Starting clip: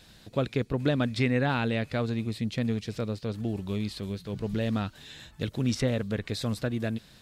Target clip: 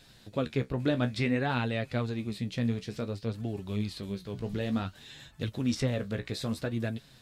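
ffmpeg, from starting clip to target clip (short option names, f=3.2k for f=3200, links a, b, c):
-af "flanger=delay=7.2:depth=9.8:regen=46:speed=0.57:shape=sinusoidal,volume=1.5dB"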